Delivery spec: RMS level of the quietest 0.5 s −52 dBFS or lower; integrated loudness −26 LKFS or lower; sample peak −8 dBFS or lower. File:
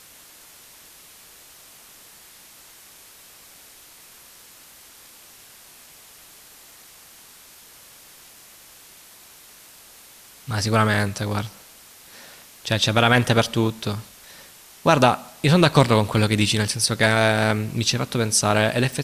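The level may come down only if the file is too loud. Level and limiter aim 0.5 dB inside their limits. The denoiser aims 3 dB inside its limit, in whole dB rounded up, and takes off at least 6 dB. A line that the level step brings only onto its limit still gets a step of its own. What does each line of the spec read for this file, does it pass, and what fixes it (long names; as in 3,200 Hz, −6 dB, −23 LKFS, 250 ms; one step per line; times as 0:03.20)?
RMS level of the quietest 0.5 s −48 dBFS: out of spec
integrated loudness −20.0 LKFS: out of spec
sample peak −2.0 dBFS: out of spec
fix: level −6.5 dB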